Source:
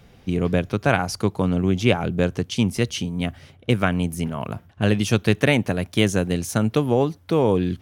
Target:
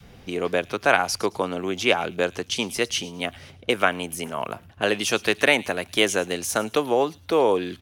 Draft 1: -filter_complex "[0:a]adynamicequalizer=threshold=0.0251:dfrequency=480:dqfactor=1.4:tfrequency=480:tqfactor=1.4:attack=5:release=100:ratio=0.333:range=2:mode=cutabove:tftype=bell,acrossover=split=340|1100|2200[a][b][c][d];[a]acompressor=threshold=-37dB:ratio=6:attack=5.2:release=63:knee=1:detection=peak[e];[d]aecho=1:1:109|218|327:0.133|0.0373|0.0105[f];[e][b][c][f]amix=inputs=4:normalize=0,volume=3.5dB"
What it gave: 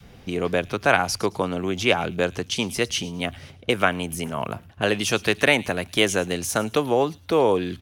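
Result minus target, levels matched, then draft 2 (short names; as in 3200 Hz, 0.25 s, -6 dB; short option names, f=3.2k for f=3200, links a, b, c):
compressor: peak gain reduction -9.5 dB
-filter_complex "[0:a]adynamicequalizer=threshold=0.0251:dfrequency=480:dqfactor=1.4:tfrequency=480:tqfactor=1.4:attack=5:release=100:ratio=0.333:range=2:mode=cutabove:tftype=bell,acrossover=split=340|1100|2200[a][b][c][d];[a]acompressor=threshold=-48.5dB:ratio=6:attack=5.2:release=63:knee=1:detection=peak[e];[d]aecho=1:1:109|218|327:0.133|0.0373|0.0105[f];[e][b][c][f]amix=inputs=4:normalize=0,volume=3.5dB"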